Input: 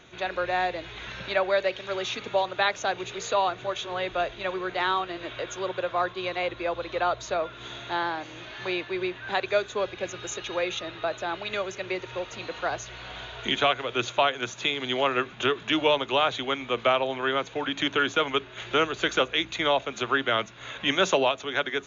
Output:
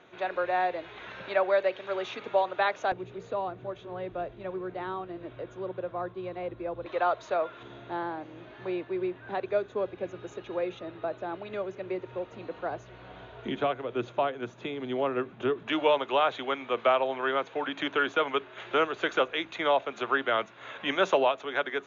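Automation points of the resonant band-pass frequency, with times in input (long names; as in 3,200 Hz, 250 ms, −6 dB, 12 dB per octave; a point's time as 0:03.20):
resonant band-pass, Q 0.54
670 Hz
from 0:02.92 170 Hz
from 0:06.86 700 Hz
from 0:07.63 270 Hz
from 0:15.67 760 Hz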